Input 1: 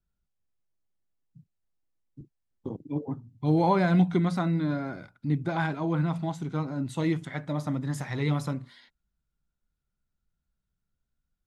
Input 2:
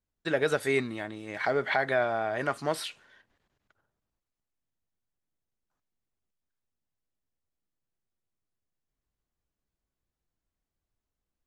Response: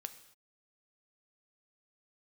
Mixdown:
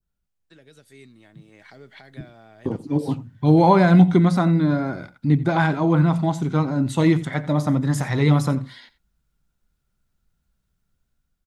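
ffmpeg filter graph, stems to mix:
-filter_complex "[0:a]adynamicequalizer=threshold=0.00398:dfrequency=2600:dqfactor=0.95:tfrequency=2600:tqfactor=0.95:attack=5:release=100:ratio=0.375:range=2:mode=cutabove:tftype=bell,volume=1.5dB,asplit=2[a][b];[b]volume=-18dB[c];[1:a]acrossover=split=290|3000[d][e][f];[e]acompressor=threshold=-41dB:ratio=6[g];[d][g][f]amix=inputs=3:normalize=0,adelay=250,volume=-16.5dB[h];[c]aecho=0:1:88:1[i];[a][h][i]amix=inputs=3:normalize=0,dynaudnorm=f=850:g=3:m=8.5dB"

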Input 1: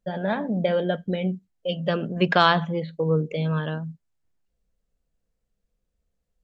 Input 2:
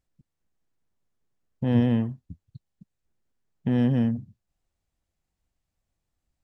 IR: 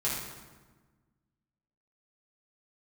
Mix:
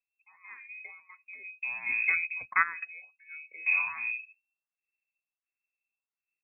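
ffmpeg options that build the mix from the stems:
-filter_complex "[0:a]dynaudnorm=f=310:g=9:m=4dB,adelay=200,volume=-4dB[a];[1:a]agate=range=-8dB:threshold=-55dB:ratio=16:detection=peak,volume=-4.5dB,asplit=2[b][c];[c]apad=whole_len=296882[d];[a][d]sidechaingate=range=-16dB:threshold=-52dB:ratio=16:detection=peak[e];[e][b]amix=inputs=2:normalize=0,lowpass=f=2.3k:t=q:w=0.5098,lowpass=f=2.3k:t=q:w=0.6013,lowpass=f=2.3k:t=q:w=0.9,lowpass=f=2.3k:t=q:w=2.563,afreqshift=-2700,asplit=2[f][g];[g]afreqshift=1.4[h];[f][h]amix=inputs=2:normalize=1"

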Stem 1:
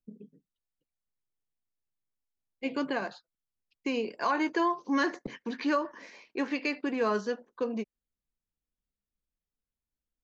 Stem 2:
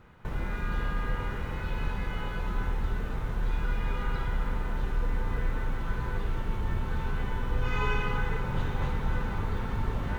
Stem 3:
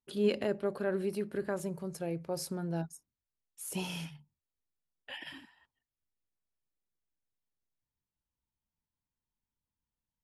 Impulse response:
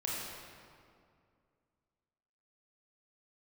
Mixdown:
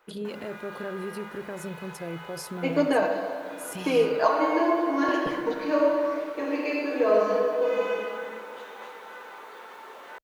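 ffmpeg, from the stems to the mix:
-filter_complex "[0:a]equalizer=f=630:w=1.4:g=13,aecho=1:1:6.4:0.86,volume=-4dB,asplit=2[a][b];[b]volume=-3dB[c];[1:a]highpass=f=440:w=0.5412,highpass=f=440:w=1.3066,highshelf=f=8.2k:g=5.5,volume=-3.5dB[d];[2:a]alimiter=level_in=5dB:limit=-24dB:level=0:latency=1,volume=-5dB,volume=2dB,asplit=2[e][f];[f]apad=whole_len=451442[g];[a][g]sidechaingate=range=-33dB:threshold=-58dB:ratio=16:detection=peak[h];[3:a]atrim=start_sample=2205[i];[c][i]afir=irnorm=-1:irlink=0[j];[h][d][e][j]amix=inputs=4:normalize=0"

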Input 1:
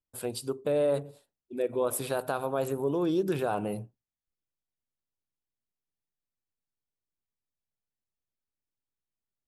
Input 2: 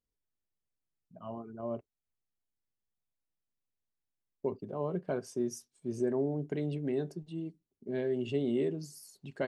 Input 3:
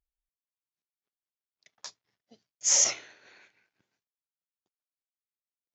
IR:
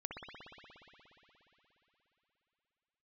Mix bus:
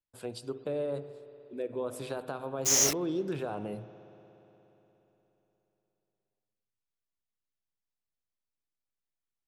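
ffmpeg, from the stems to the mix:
-filter_complex "[0:a]lowpass=6.9k,acrossover=split=410[a][b];[b]acompressor=threshold=-32dB:ratio=2.5[c];[a][c]amix=inputs=2:normalize=0,volume=-6dB,asplit=2[d][e];[e]volume=-9.5dB[f];[2:a]lowshelf=f=440:g=10,flanger=delay=19:depth=7.7:speed=1.1,acrusher=bits=4:mix=0:aa=0.000001,volume=0dB,asplit=2[g][h];[h]volume=-21.5dB[i];[3:a]atrim=start_sample=2205[j];[f][i]amix=inputs=2:normalize=0[k];[k][j]afir=irnorm=-1:irlink=0[l];[d][g][l]amix=inputs=3:normalize=0"

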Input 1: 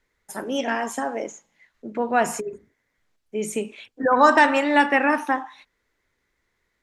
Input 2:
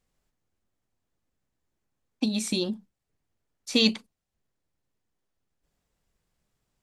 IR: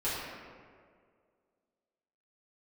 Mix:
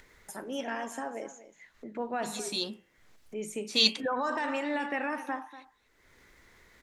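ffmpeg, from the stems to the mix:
-filter_complex "[0:a]acompressor=mode=upward:threshold=-29dB:ratio=2.5,alimiter=limit=-12dB:level=0:latency=1:release=41,volume=-10dB,asplit=3[a][b][c];[b]volume=-15dB[d];[1:a]lowshelf=f=330:g=-11.5,bandreject=f=86.1:t=h:w=4,bandreject=f=172.2:t=h:w=4,bandreject=f=258.3:t=h:w=4,bandreject=f=344.4:t=h:w=4,bandreject=f=430.5:t=h:w=4,bandreject=f=516.6:t=h:w=4,bandreject=f=602.7:t=h:w=4,bandreject=f=688.8:t=h:w=4,bandreject=f=774.9:t=h:w=4,bandreject=f=861:t=h:w=4,bandreject=f=947.1:t=h:w=4,bandreject=f=1.0332k:t=h:w=4,bandreject=f=1.1193k:t=h:w=4,bandreject=f=1.2054k:t=h:w=4,bandreject=f=1.2915k:t=h:w=4,bandreject=f=1.3776k:t=h:w=4,bandreject=f=1.4637k:t=h:w=4,bandreject=f=1.5498k:t=h:w=4,bandreject=f=1.6359k:t=h:w=4,bandreject=f=1.722k:t=h:w=4,bandreject=f=1.8081k:t=h:w=4,bandreject=f=1.8942k:t=h:w=4,bandreject=f=1.9803k:t=h:w=4,bandreject=f=2.0664k:t=h:w=4,bandreject=f=2.1525k:t=h:w=4,bandreject=f=2.2386k:t=h:w=4,bandreject=f=2.3247k:t=h:w=4,bandreject=f=2.4108k:t=h:w=4,bandreject=f=2.4969k:t=h:w=4,bandreject=f=2.583k:t=h:w=4,bandreject=f=2.6691k:t=h:w=4,bandreject=f=2.7552k:t=h:w=4,bandreject=f=2.8413k:t=h:w=4,bandreject=f=2.9274k:t=h:w=4,bandreject=f=3.0135k:t=h:w=4,bandreject=f=3.0996k:t=h:w=4,bandreject=f=3.1857k:t=h:w=4,bandreject=f=3.2718k:t=h:w=4,adynamicequalizer=threshold=0.0158:dfrequency=2900:dqfactor=0.7:tfrequency=2900:tqfactor=0.7:attack=5:release=100:ratio=0.375:range=3.5:mode=boostabove:tftype=highshelf,volume=-3dB[e];[c]apad=whole_len=301104[f];[e][f]sidechaincompress=threshold=-41dB:ratio=8:attack=16:release=236[g];[d]aecho=0:1:240:1[h];[a][g][h]amix=inputs=3:normalize=0"

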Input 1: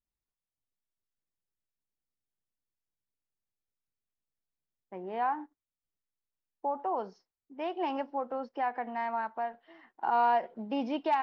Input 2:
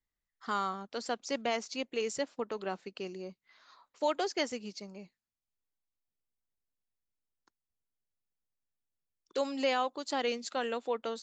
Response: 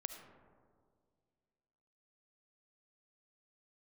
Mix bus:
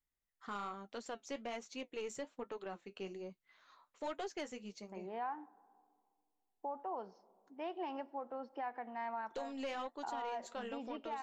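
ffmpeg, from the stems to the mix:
-filter_complex "[0:a]volume=-8dB,asplit=2[a][b];[b]volume=-14dB[c];[1:a]equalizer=f=4.9k:w=3.2:g=-9.5,flanger=delay=6.9:depth=4.2:regen=-54:speed=1.2:shape=sinusoidal,aeval=exprs='(tanh(28.2*val(0)+0.3)-tanh(0.3))/28.2':c=same,volume=0.5dB[d];[2:a]atrim=start_sample=2205[e];[c][e]afir=irnorm=-1:irlink=0[f];[a][d][f]amix=inputs=3:normalize=0,alimiter=level_in=8.5dB:limit=-24dB:level=0:latency=1:release=395,volume=-8.5dB"

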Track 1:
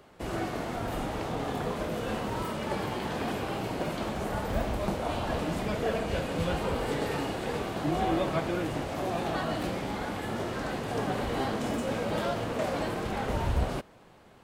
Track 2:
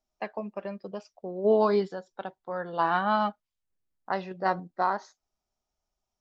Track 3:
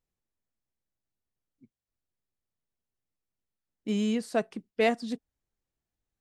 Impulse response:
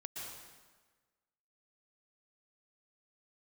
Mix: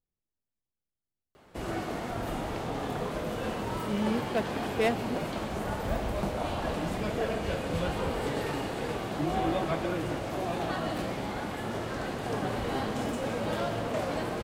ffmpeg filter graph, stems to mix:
-filter_complex "[0:a]adelay=1350,volume=-4dB,asplit=2[a][b];[b]volume=-3dB[c];[2:a]adynamicsmooth=sensitivity=7:basefreq=1.1k,volume=-2.5dB[d];[3:a]atrim=start_sample=2205[e];[c][e]afir=irnorm=-1:irlink=0[f];[a][d][f]amix=inputs=3:normalize=0"

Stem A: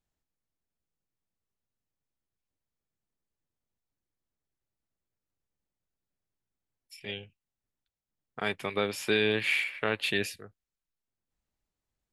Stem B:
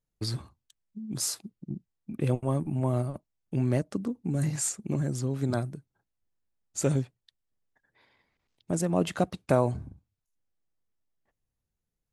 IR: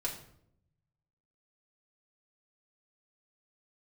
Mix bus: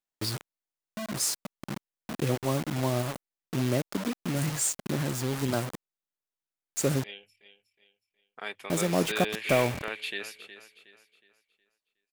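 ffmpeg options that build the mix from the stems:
-filter_complex "[0:a]equalizer=f=66:w=0.32:g=-15,bandreject=f=50:t=h:w=6,bandreject=f=100:t=h:w=6,volume=-4.5dB,asplit=2[a][b];[b]volume=-13dB[c];[1:a]acrusher=bits=5:mix=0:aa=0.000001,volume=16dB,asoftclip=hard,volume=-16dB,volume=2dB[d];[c]aecho=0:1:366|732|1098|1464|1830:1|0.37|0.137|0.0507|0.0187[e];[a][d][e]amix=inputs=3:normalize=0,lowshelf=f=150:g=-8.5"

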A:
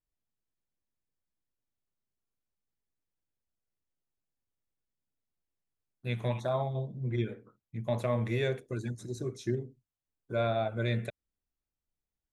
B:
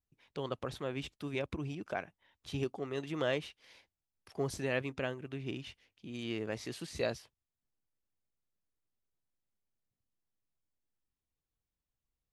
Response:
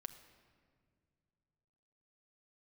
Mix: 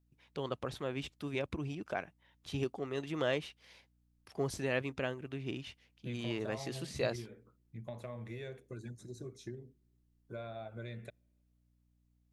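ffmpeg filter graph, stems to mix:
-filter_complex "[0:a]acompressor=threshold=-33dB:ratio=6,aeval=exprs='val(0)+0.000631*(sin(2*PI*60*n/s)+sin(2*PI*2*60*n/s)/2+sin(2*PI*3*60*n/s)/3+sin(2*PI*4*60*n/s)/4+sin(2*PI*5*60*n/s)/5)':c=same,volume=-8dB,asplit=2[a][b];[b]volume=-22.5dB[c];[1:a]volume=0dB[d];[2:a]atrim=start_sample=2205[e];[c][e]afir=irnorm=-1:irlink=0[f];[a][d][f]amix=inputs=3:normalize=0"

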